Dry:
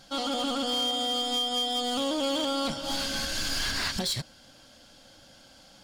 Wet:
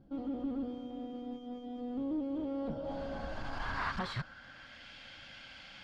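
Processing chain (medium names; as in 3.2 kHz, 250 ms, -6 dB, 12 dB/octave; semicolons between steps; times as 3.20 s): one-sided clip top -33.5 dBFS, bottom -28 dBFS; amplifier tone stack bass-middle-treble 5-5-5; low-pass sweep 350 Hz -> 2.3 kHz, 2.30–4.91 s; trim +14.5 dB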